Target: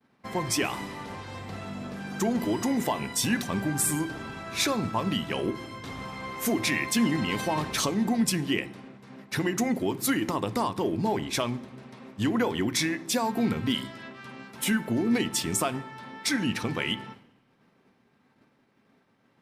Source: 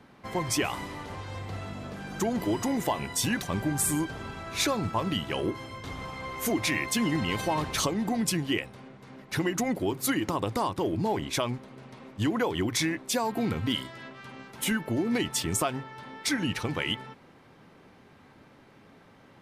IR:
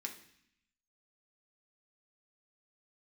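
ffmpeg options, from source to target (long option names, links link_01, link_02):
-filter_complex "[0:a]agate=range=-33dB:threshold=-46dB:ratio=3:detection=peak,asplit=2[link_01][link_02];[1:a]atrim=start_sample=2205,lowshelf=frequency=230:gain=10[link_03];[link_02][link_03]afir=irnorm=-1:irlink=0,volume=-6dB[link_04];[link_01][link_04]amix=inputs=2:normalize=0,volume=-1.5dB"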